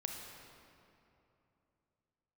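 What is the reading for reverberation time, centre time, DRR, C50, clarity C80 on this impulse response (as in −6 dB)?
2.9 s, 88 ms, 1.5 dB, 2.5 dB, 3.5 dB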